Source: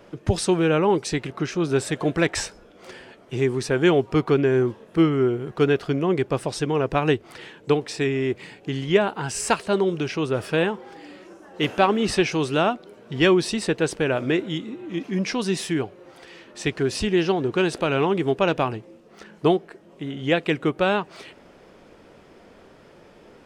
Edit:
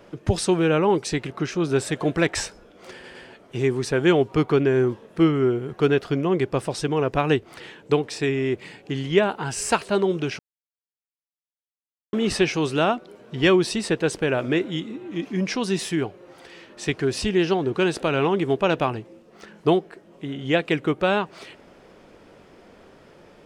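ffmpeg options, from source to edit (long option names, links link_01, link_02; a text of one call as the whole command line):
ffmpeg -i in.wav -filter_complex "[0:a]asplit=5[link_01][link_02][link_03][link_04][link_05];[link_01]atrim=end=3.042[link_06];[link_02]atrim=start=2.928:end=3.042[link_07];[link_03]atrim=start=2.928:end=10.17,asetpts=PTS-STARTPTS,afade=type=out:start_time=7.238:duration=0.004:curve=hsin[link_08];[link_04]atrim=start=10.17:end=11.91,asetpts=PTS-STARTPTS,volume=0[link_09];[link_05]atrim=start=11.91,asetpts=PTS-STARTPTS,afade=type=in:duration=0.004:curve=hsin[link_10];[link_06][link_07]acrossfade=duration=0.004:curve1=hsin:curve2=hsin[link_11];[link_08][link_09][link_10]concat=n=3:v=0:a=1[link_12];[link_11][link_12]acrossfade=duration=0.004:curve1=hsin:curve2=hsin" out.wav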